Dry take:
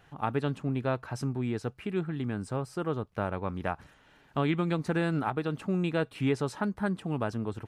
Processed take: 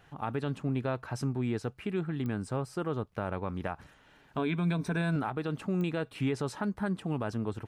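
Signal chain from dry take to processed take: 4.37–5.16 s: rippled EQ curve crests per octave 1.6, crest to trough 11 dB; peak limiter -22 dBFS, peak gain reduction 6.5 dB; clicks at 2.26/5.81 s, -26 dBFS

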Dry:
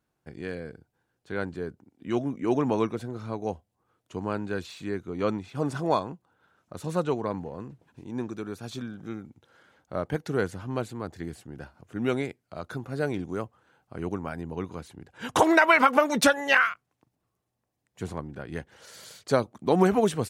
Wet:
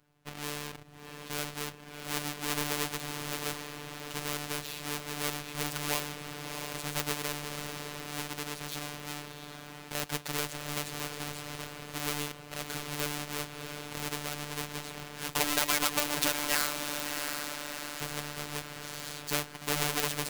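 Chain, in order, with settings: square wave that keeps the level; peaking EQ 2.7 kHz +3 dB; echo that smears into a reverb 703 ms, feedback 42%, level -12 dB; robot voice 147 Hz; spectrum-flattening compressor 2:1; trim -7 dB

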